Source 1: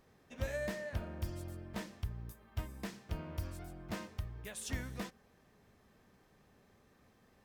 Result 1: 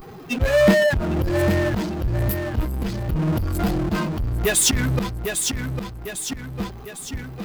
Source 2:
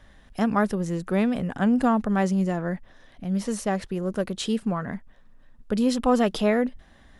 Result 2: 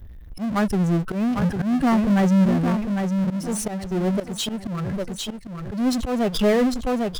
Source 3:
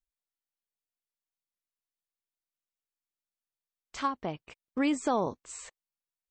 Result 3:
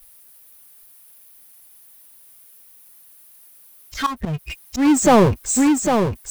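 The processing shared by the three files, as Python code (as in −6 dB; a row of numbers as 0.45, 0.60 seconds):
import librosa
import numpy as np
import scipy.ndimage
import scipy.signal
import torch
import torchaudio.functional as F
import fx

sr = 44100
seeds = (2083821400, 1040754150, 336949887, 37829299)

p1 = fx.bin_expand(x, sr, power=2.0)
p2 = fx.low_shelf(p1, sr, hz=350.0, db=8.5)
p3 = p2 + fx.echo_feedback(p2, sr, ms=802, feedback_pct=26, wet_db=-11.5, dry=0)
p4 = fx.auto_swell(p3, sr, attack_ms=352.0)
p5 = fx.power_curve(p4, sr, exponent=0.5)
y = p5 * 10.0 ** (-22 / 20.0) / np.sqrt(np.mean(np.square(p5)))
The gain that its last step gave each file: +21.0, −1.0, +12.0 decibels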